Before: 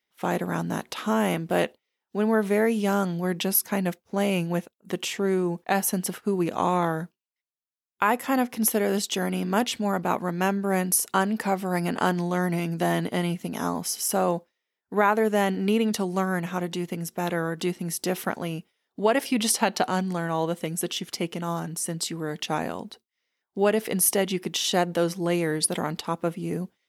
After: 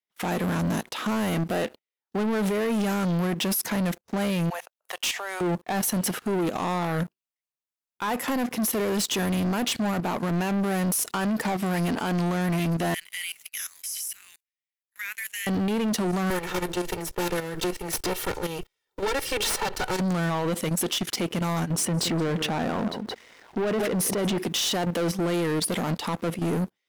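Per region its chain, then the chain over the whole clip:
4.50–5.41 s: steep high-pass 630 Hz + band-stop 7.6 kHz, Q 17
12.94–15.47 s: steep high-pass 2.1 kHz + peaking EQ 4.1 kHz -9.5 dB 1.3 oct + compression 2:1, threshold -35 dBFS
16.30–20.00 s: comb filter that takes the minimum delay 2.2 ms + bass shelf 250 Hz -4 dB + three bands compressed up and down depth 40%
21.71–24.38 s: low-pass 1.5 kHz 6 dB/octave + delay 172 ms -18.5 dB + level flattener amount 50%
whole clip: level held to a coarse grid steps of 16 dB; peak limiter -26 dBFS; waveshaping leveller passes 3; trim +4.5 dB

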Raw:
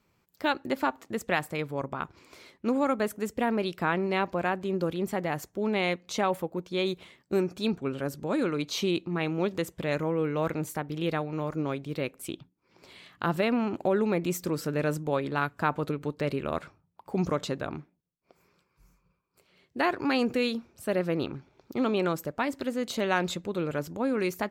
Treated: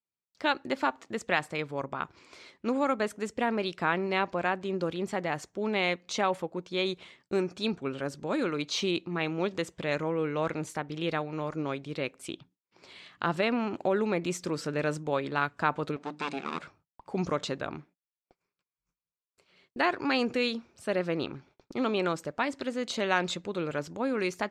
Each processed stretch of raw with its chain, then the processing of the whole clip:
15.96–16.59 s: comb filter that takes the minimum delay 0.79 ms + brick-wall FIR band-pass 160–9300 Hz + hum notches 50/100/150/200/250/300 Hz
whole clip: frequency weighting ITU-R 468; gate -60 dBFS, range -30 dB; tilt EQ -4.5 dB/octave

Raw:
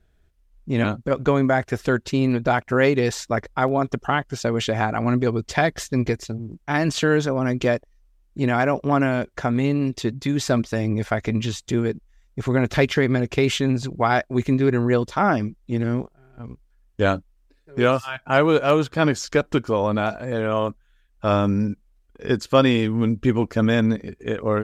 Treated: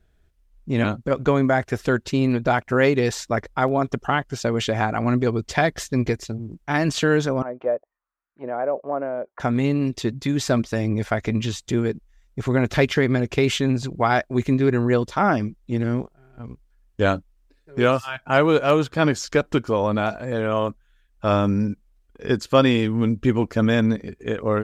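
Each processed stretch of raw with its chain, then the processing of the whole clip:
7.42–9.40 s: low-pass 2.9 kHz + peaking EQ 1.3 kHz +4 dB 1.4 oct + auto-wah 550–1500 Hz, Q 3, down, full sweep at -17 dBFS
whole clip: none

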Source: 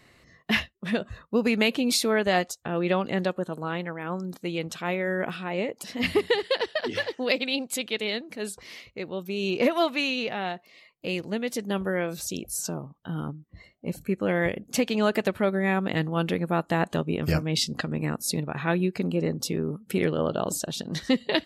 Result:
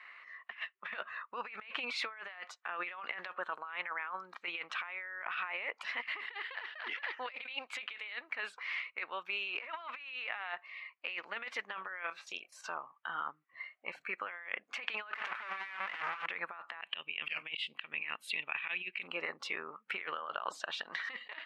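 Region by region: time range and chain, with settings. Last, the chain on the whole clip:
12.03–12.66 s: level held to a coarse grid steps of 11 dB + doubling 25 ms -10 dB
15.13–16.26 s: waveshaping leveller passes 5 + hard clipper -26 dBFS
16.81–19.08 s: FFT filter 160 Hz 0 dB, 1.4 kHz -13 dB, 3 kHz +13 dB, 5.7 kHz -14 dB, 9.1 kHz +6 dB + slow attack 138 ms
whole clip: Chebyshev band-pass 1.1–2.4 kHz, order 2; compressor with a negative ratio -44 dBFS, ratio -1; trim +2.5 dB

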